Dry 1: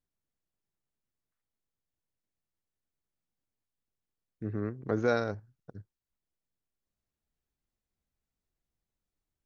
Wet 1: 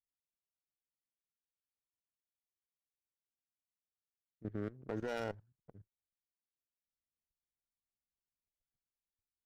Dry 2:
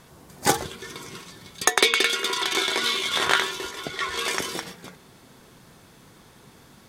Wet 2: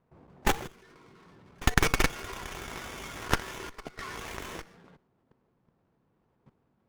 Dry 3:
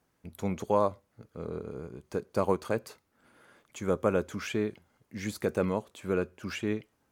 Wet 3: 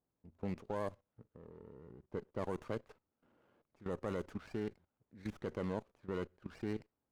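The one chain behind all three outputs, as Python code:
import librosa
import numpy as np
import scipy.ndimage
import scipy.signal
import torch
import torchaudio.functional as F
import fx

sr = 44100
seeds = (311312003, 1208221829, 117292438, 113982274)

y = fx.high_shelf(x, sr, hz=3800.0, db=10.0)
y = fx.env_lowpass(y, sr, base_hz=910.0, full_db=-20.0)
y = fx.level_steps(y, sr, step_db=17)
y = fx.running_max(y, sr, window=9)
y = y * 10.0 ** (-4.0 / 20.0)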